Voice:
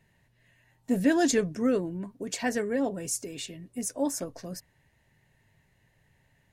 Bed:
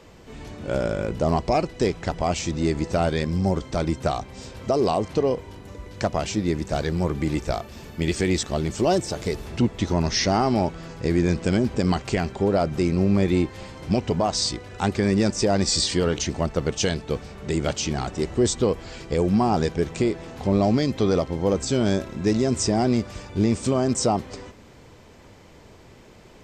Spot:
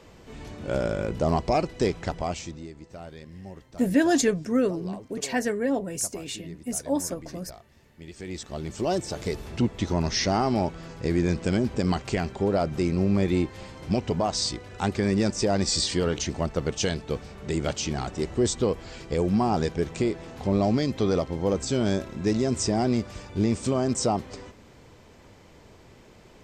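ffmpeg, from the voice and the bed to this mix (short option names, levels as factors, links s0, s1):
-filter_complex "[0:a]adelay=2900,volume=1.33[s0];[1:a]volume=5.31,afade=t=out:st=1.98:d=0.7:silence=0.133352,afade=t=in:st=8.12:d=1.11:silence=0.149624[s1];[s0][s1]amix=inputs=2:normalize=0"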